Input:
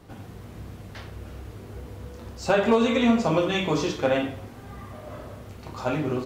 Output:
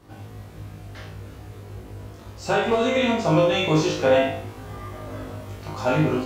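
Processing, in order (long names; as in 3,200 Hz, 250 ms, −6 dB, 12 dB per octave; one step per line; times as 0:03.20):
speech leveller 2 s
flutter between parallel walls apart 3.3 metres, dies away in 0.47 s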